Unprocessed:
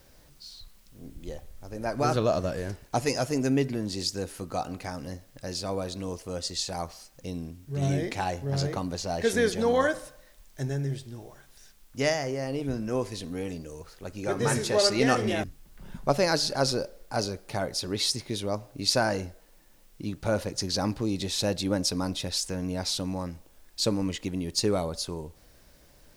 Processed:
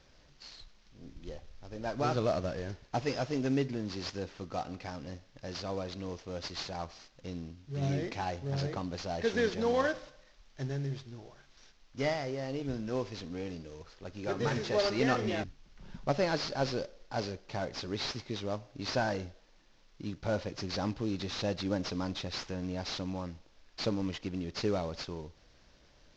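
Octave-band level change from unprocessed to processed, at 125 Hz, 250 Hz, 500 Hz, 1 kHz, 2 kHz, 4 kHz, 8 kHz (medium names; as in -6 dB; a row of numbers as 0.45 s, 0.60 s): -5.0 dB, -5.5 dB, -5.5 dB, -5.5 dB, -5.5 dB, -9.0 dB, -15.0 dB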